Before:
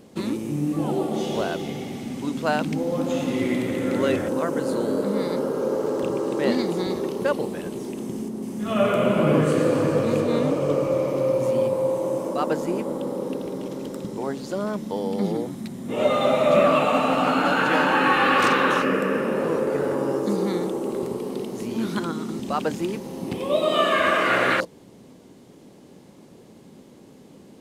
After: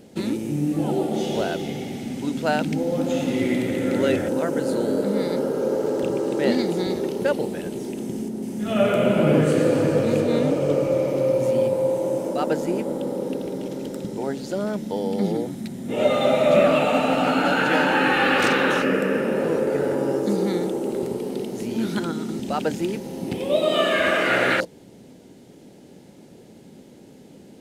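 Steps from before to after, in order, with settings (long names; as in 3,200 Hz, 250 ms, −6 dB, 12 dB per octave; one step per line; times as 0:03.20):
parametric band 1,100 Hz −14 dB 0.21 octaves
level +1.5 dB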